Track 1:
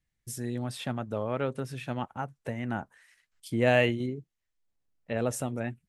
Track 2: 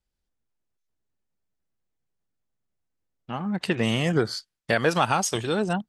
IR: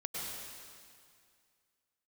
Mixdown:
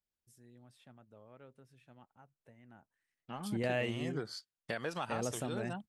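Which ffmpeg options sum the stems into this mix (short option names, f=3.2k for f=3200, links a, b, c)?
-filter_complex "[0:a]volume=-1dB[a];[1:a]lowshelf=f=71:g=-10,volume=-10.5dB,asplit=2[b][c];[c]apad=whole_len=259348[d];[a][d]sidechaingate=range=-25dB:threshold=-44dB:ratio=16:detection=peak[e];[e][b]amix=inputs=2:normalize=0,acompressor=threshold=-38dB:ratio=2"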